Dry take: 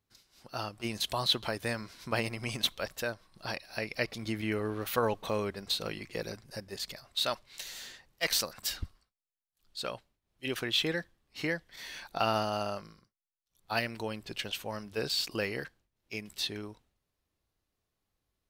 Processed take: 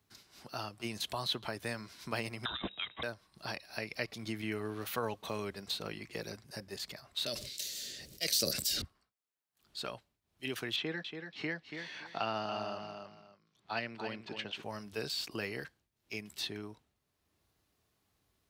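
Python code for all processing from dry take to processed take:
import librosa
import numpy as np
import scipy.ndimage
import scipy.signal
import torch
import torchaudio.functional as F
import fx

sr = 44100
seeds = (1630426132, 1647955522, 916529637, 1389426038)

y = fx.chain(x, sr, fx.freq_invert(carrier_hz=3800),
    fx.band_squash(depth_pct=100), at=(2.45, 3.03))
y = fx.chain(y, sr, fx.curve_eq(hz=(580.0, 880.0, 4700.0), db=(0, -22, 9)),
    fx.sustainer(db_per_s=47.0), at=(7.26, 8.82))
y = fx.chain(y, sr, fx.bandpass_edges(low_hz=130.0, high_hz=3800.0),
    fx.echo_feedback(ms=283, feedback_pct=16, wet_db=-9.0), at=(10.76, 14.63))
y = scipy.signal.sosfilt(scipy.signal.butter(2, 62.0, 'highpass', fs=sr, output='sos'), y)
y = fx.notch(y, sr, hz=520.0, q=12.0)
y = fx.band_squash(y, sr, depth_pct=40)
y = y * 10.0 ** (-4.5 / 20.0)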